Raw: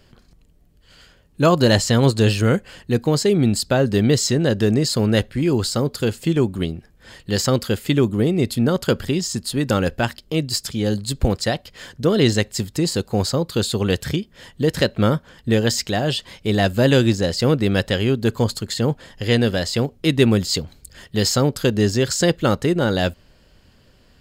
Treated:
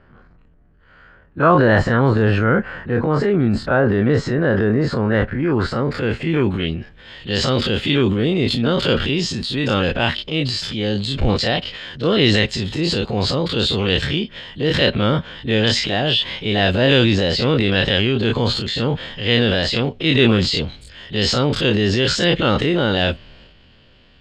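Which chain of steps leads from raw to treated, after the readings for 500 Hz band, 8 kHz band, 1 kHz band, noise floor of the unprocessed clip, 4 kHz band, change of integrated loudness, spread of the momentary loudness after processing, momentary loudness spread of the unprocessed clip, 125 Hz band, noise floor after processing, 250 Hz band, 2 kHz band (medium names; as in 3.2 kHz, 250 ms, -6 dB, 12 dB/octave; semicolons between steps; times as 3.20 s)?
+1.0 dB, -8.5 dB, +4.0 dB, -54 dBFS, +5.5 dB, +2.0 dB, 7 LU, 7 LU, +0.5 dB, -50 dBFS, +0.5 dB, +6.0 dB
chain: every event in the spectrogram widened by 60 ms; low-pass sweep 1.5 kHz -> 3.2 kHz, 5.33–7.06 s; transient shaper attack -3 dB, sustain +7 dB; trim -2.5 dB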